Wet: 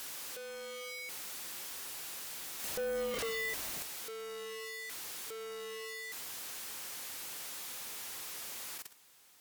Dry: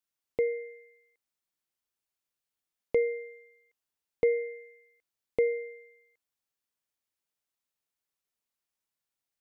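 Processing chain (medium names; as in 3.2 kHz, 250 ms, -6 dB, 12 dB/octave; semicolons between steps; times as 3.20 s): one-bit comparator; Doppler pass-by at 3.20 s, 20 m/s, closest 1.5 m; bass shelf 170 Hz -10.5 dB; band-stop 630 Hz, Q 15; de-hum 195.6 Hz, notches 17; level held to a coarse grid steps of 19 dB; reverse echo 47 ms -20 dB; sine folder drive 16 dB, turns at -45 dBFS; trim +12.5 dB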